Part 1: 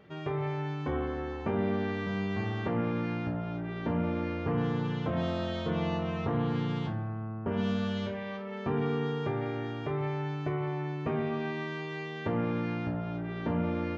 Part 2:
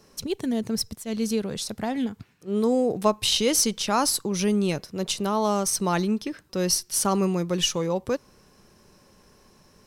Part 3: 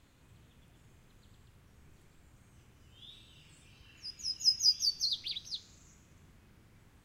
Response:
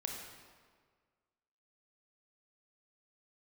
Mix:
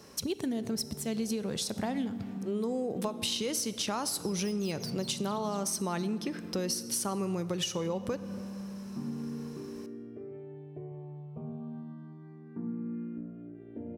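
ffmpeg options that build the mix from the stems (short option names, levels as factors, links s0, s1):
-filter_complex "[0:a]bandpass=f=220:t=q:w=1.8:csg=0,asplit=2[s0][s1];[s1]afreqshift=0.3[s2];[s0][s2]amix=inputs=2:normalize=1,adelay=300,volume=0.75,asplit=2[s3][s4];[s4]volume=0.335[s5];[1:a]acompressor=threshold=0.0562:ratio=6,volume=1.19,asplit=2[s6][s7];[s7]volume=0.335[s8];[2:a]aeval=exprs='(tanh(44.7*val(0)+0.65)-tanh(0.65))/44.7':c=same,volume=0.631[s9];[3:a]atrim=start_sample=2205[s10];[s5][s8]amix=inputs=2:normalize=0[s11];[s11][s10]afir=irnorm=-1:irlink=0[s12];[s3][s6][s9][s12]amix=inputs=4:normalize=0,highpass=61,acompressor=threshold=0.0224:ratio=2.5"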